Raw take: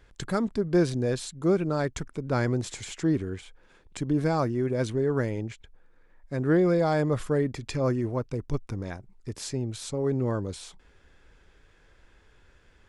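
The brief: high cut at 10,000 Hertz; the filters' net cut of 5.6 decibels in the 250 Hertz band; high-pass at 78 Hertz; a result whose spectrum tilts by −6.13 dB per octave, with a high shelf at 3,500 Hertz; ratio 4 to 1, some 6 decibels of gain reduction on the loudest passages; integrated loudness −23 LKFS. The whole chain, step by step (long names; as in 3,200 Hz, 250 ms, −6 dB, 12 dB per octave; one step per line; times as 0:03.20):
high-pass filter 78 Hz
low-pass filter 10,000 Hz
parametric band 250 Hz −8.5 dB
high-shelf EQ 3,500 Hz −4.5 dB
downward compressor 4 to 1, threshold −29 dBFS
level +12 dB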